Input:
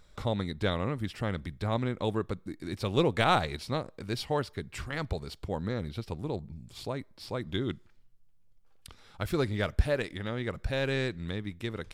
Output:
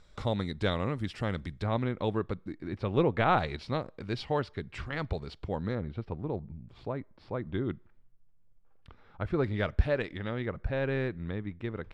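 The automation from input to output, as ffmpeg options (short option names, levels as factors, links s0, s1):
-af "asetnsamples=n=441:p=0,asendcmd='1.63 lowpass f 3500;2.58 lowpass f 2100;3.38 lowpass f 3800;5.75 lowpass f 1700;9.44 lowpass f 3200;10.46 lowpass f 1900',lowpass=7500"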